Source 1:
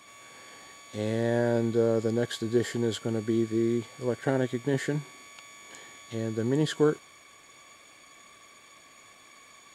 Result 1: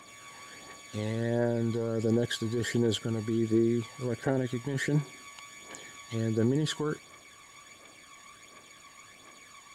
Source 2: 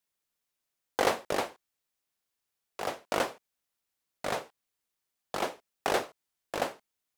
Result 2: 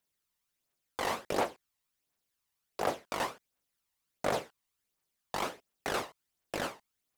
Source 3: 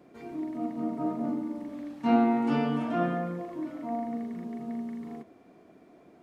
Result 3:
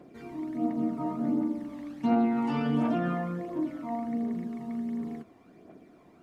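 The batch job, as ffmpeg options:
-af "alimiter=limit=-21.5dB:level=0:latency=1:release=25,aphaser=in_gain=1:out_gain=1:delay=1.1:decay=0.46:speed=1.4:type=triangular"

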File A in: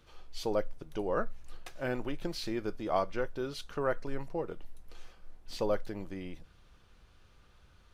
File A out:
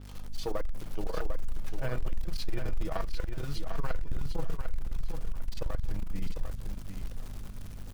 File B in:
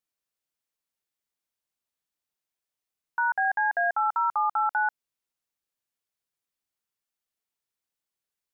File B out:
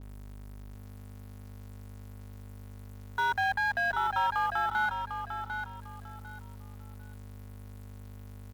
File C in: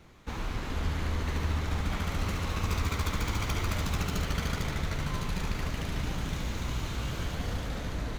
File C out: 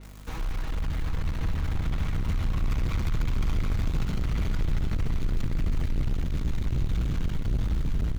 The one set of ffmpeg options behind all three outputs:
-filter_complex "[0:a]aecho=1:1:6.3:0.48,asubboost=boost=12:cutoff=100,acrossover=split=270|710|7100[a][b][c][d];[a]asoftclip=type=hard:threshold=-19dB[e];[d]acompressor=mode=upward:threshold=-57dB:ratio=2.5[f];[e][b][c][f]amix=inputs=4:normalize=0,aeval=exprs='val(0)+0.00631*(sin(2*PI*50*n/s)+sin(2*PI*2*50*n/s)/2+sin(2*PI*3*50*n/s)/3+sin(2*PI*4*50*n/s)/4+sin(2*PI*5*50*n/s)/5)':c=same,asoftclip=type=tanh:threshold=-23.5dB,acrusher=bits=9:dc=4:mix=0:aa=0.000001,aecho=1:1:749|1498|2247:0.447|0.112|0.0279,adynamicequalizer=threshold=0.00251:dfrequency=5000:dqfactor=0.7:tfrequency=5000:tqfactor=0.7:attack=5:release=100:ratio=0.375:range=2.5:mode=cutabove:tftype=highshelf"

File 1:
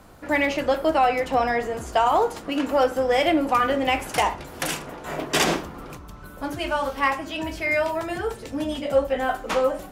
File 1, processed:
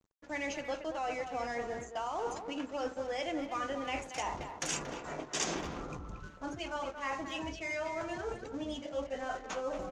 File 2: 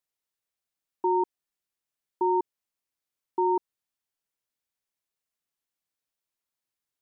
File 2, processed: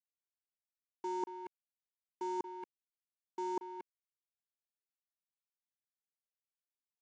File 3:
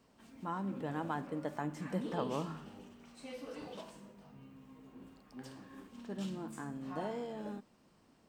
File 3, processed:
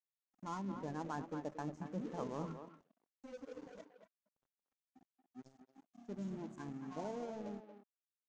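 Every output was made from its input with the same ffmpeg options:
-filter_complex "[0:a]afftdn=nr=20:nf=-39,areverse,acompressor=threshold=-37dB:ratio=4,areverse,aeval=exprs='sgn(val(0))*max(abs(val(0))-0.00188,0)':c=same,lowpass=f=6.6k:t=q:w=4.5,asplit=2[a][b];[b]adelay=230,highpass=300,lowpass=3.4k,asoftclip=type=hard:threshold=-31dB,volume=-8dB[c];[a][c]amix=inputs=2:normalize=0"

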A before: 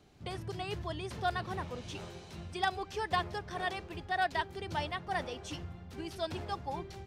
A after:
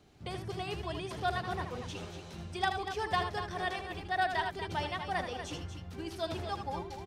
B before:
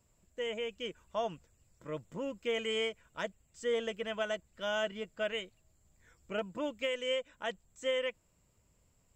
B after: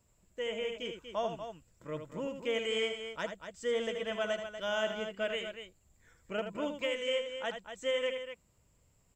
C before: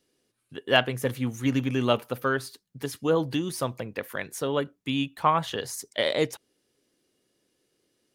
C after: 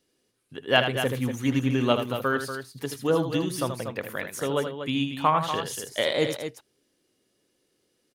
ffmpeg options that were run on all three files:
-af "aecho=1:1:78.72|239.1:0.398|0.355"

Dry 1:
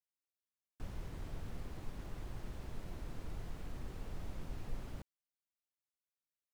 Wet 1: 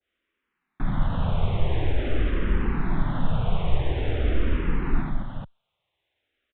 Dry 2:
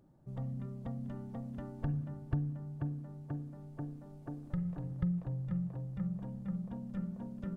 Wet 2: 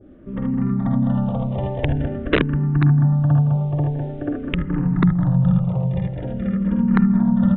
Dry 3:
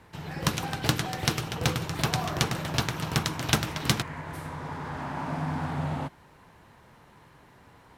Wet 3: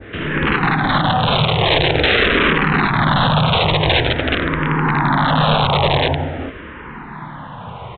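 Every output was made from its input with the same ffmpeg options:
-filter_complex "[0:a]adynamicequalizer=threshold=0.00501:dfrequency=2800:dqfactor=0.86:tfrequency=2800:tqfactor=0.86:attack=5:release=100:ratio=0.375:range=3:mode=cutabove:tftype=bell,asplit=2[a][b];[b]acompressor=threshold=-40dB:ratio=6,volume=2.5dB[c];[a][c]amix=inputs=2:normalize=0,aecho=1:1:50|65|77|164|206|425:0.473|0.316|0.708|0.211|0.531|0.531,aresample=8000,aeval=exprs='(mod(9.44*val(0)+1,2)-1)/9.44':c=same,aresample=44100,alimiter=level_in=17dB:limit=-1dB:release=50:level=0:latency=1,asplit=2[d][e];[e]afreqshift=-0.47[f];[d][f]amix=inputs=2:normalize=1,volume=-2.5dB"

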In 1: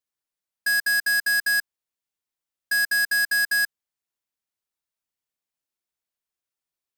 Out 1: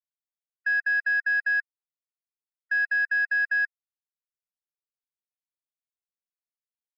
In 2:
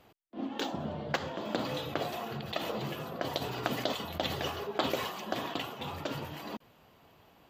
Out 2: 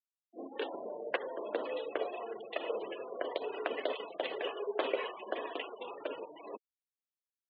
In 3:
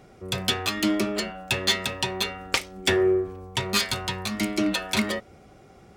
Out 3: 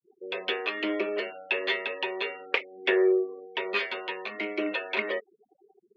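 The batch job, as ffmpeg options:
-af "afftfilt=real='re*gte(hypot(re,im),0.0158)':imag='im*gte(hypot(re,im),0.0158)':win_size=1024:overlap=0.75,highpass=f=380:w=0.5412,highpass=f=380:w=1.3066,equalizer=f=440:t=q:w=4:g=6,equalizer=f=800:t=q:w=4:g=-7,equalizer=f=1.3k:t=q:w=4:g=-7,equalizer=f=2.6k:t=q:w=4:g=3,lowpass=f=2.7k:w=0.5412,lowpass=f=2.7k:w=1.3066"

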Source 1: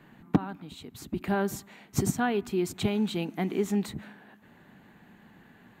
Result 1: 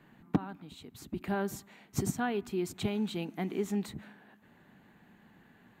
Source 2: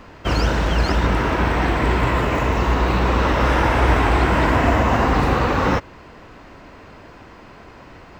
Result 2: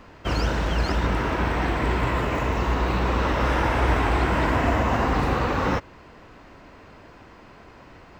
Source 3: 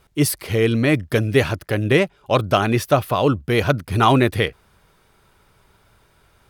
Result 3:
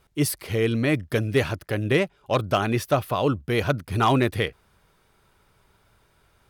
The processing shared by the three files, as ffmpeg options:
-af "asoftclip=type=hard:threshold=-6dB,volume=-5dB"

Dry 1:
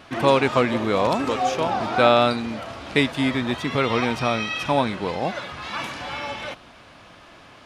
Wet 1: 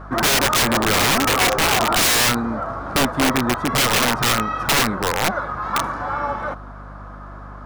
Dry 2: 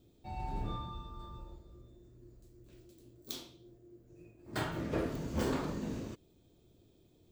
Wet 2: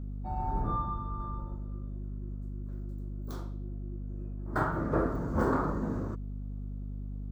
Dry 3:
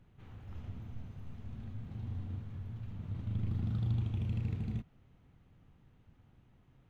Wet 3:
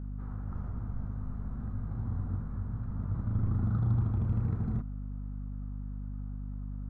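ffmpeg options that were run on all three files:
-filter_complex "[0:a]asplit=2[a][b];[b]asoftclip=type=hard:threshold=-17.5dB,volume=-11.5dB[c];[a][c]amix=inputs=2:normalize=0,highshelf=f=1.9k:t=q:w=3:g=-13,aeval=exprs='val(0)+0.0112*(sin(2*PI*50*n/s)+sin(2*PI*2*50*n/s)/2+sin(2*PI*3*50*n/s)/3+sin(2*PI*4*50*n/s)/4+sin(2*PI*5*50*n/s)/5)':c=same,aeval=exprs='(mod(5.01*val(0)+1,2)-1)/5.01':c=same,volume=2.5dB"

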